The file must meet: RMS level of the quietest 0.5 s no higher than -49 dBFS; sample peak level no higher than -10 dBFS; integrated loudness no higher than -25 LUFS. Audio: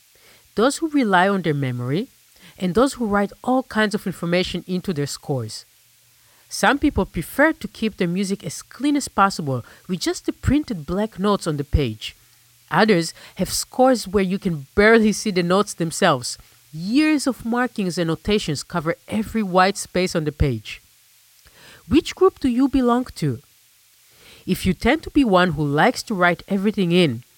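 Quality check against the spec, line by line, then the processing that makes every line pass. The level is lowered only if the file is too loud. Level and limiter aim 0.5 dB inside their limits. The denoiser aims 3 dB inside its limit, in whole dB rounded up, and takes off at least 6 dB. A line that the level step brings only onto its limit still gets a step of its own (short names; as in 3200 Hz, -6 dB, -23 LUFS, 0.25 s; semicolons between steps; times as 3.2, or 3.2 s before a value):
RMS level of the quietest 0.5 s -55 dBFS: OK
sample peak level -3.0 dBFS: fail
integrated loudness -20.5 LUFS: fail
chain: gain -5 dB; limiter -10.5 dBFS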